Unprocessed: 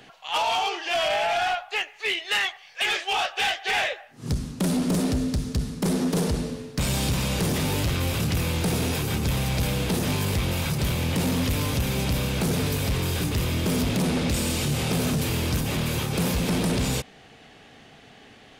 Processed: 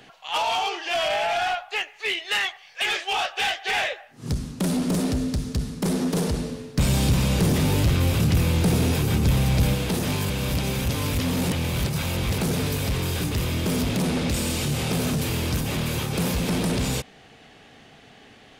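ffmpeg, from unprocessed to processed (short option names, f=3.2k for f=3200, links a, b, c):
-filter_complex "[0:a]asettb=1/sr,asplit=3[a][b][c];[a]atrim=end=6.764[d];[b]atrim=start=6.76:end=9.75,asetpts=PTS-STARTPTS,afade=t=in:d=0.004:c=qsin,afade=t=out:st=2.986:d=0.004:c=qsin,lowshelf=f=390:g=6[e];[c]atrim=start=9.746[f];[d][e]acrossfade=d=0.004:c1=hsin:c2=qsin[g];[g][f]acrossfade=d=0.004:c1=qsin:c2=hsin,asplit=3[h][i][j];[h]atrim=end=10.302[k];[i]atrim=start=10.298:end=12.382,asetpts=PTS-STARTPTS,areverse[l];[j]atrim=start=12.378[m];[k][l]acrossfade=d=0.004:c1=hsin:c2=hsin[n];[n][m]acrossfade=d=0.004:c1=hsin:c2=hsin"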